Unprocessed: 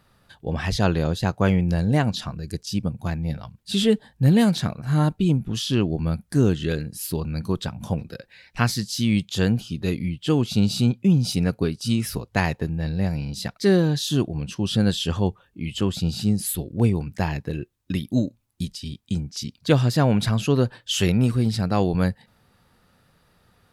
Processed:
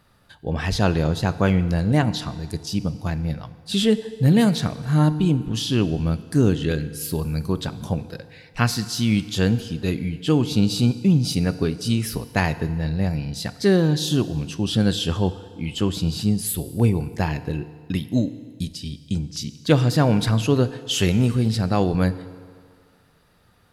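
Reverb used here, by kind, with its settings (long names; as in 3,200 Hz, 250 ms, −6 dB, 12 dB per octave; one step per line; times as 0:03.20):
feedback delay network reverb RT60 2 s, low-frequency decay 0.8×, high-frequency decay 0.8×, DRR 13 dB
level +1 dB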